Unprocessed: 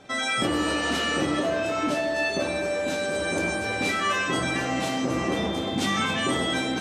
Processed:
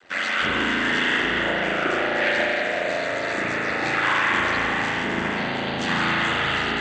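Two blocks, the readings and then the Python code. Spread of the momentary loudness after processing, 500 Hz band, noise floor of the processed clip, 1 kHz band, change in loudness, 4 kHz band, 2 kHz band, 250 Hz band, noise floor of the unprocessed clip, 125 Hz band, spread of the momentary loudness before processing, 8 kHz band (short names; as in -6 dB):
5 LU, 0.0 dB, -27 dBFS, +3.5 dB, +3.5 dB, +1.5 dB, +7.0 dB, -1.5 dB, -29 dBFS, -0.5 dB, 3 LU, -7.0 dB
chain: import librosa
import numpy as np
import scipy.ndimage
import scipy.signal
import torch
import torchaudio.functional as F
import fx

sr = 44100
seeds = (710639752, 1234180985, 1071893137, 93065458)

y = fx.notch(x, sr, hz=2300.0, q=10.0)
y = fx.noise_vocoder(y, sr, seeds[0], bands=16)
y = fx.peak_eq(y, sr, hz=2000.0, db=9.5, octaves=1.5)
y = y * np.sin(2.0 * np.pi * 45.0 * np.arange(len(y)) / sr)
y = fx.rev_spring(y, sr, rt60_s=3.6, pass_ms=(36,), chirp_ms=50, drr_db=-4.5)
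y = y * 10.0 ** (-3.0 / 20.0)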